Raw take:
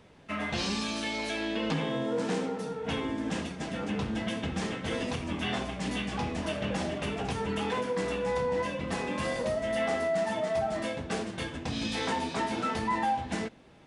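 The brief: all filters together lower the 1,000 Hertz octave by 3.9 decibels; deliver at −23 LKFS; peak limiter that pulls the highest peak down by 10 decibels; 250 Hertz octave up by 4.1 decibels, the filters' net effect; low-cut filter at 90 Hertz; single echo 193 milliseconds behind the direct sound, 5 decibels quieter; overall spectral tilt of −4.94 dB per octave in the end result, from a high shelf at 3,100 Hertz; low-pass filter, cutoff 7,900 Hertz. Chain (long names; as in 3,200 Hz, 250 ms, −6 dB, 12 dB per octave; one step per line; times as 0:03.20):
high-pass filter 90 Hz
low-pass filter 7,900 Hz
parametric band 250 Hz +5.5 dB
parametric band 1,000 Hz −5 dB
high-shelf EQ 3,100 Hz −4 dB
brickwall limiter −27.5 dBFS
single-tap delay 193 ms −5 dB
level +11.5 dB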